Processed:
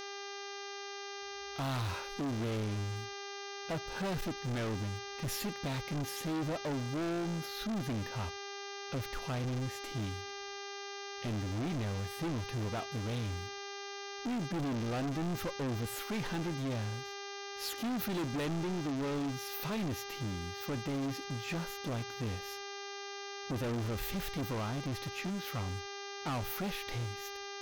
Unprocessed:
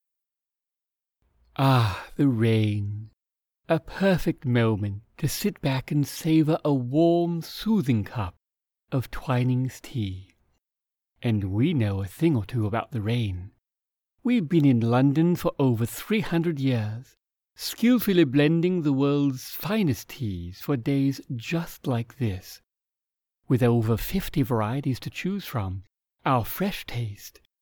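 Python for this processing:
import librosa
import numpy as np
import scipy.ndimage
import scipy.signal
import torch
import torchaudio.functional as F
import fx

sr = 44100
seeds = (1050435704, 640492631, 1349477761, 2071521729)

y = fx.dmg_buzz(x, sr, base_hz=400.0, harmonics=16, level_db=-37.0, tilt_db=-3, odd_only=False)
y = np.clip(y, -10.0 ** (-26.0 / 20.0), 10.0 ** (-26.0 / 20.0))
y = F.gain(torch.from_numpy(y), -7.0).numpy()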